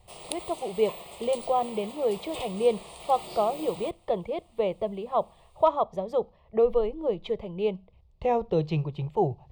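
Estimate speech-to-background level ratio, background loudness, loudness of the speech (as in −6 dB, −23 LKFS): 12.5 dB, −41.0 LKFS, −28.5 LKFS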